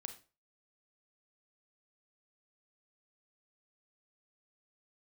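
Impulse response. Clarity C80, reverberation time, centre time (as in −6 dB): 16.0 dB, 0.35 s, 12 ms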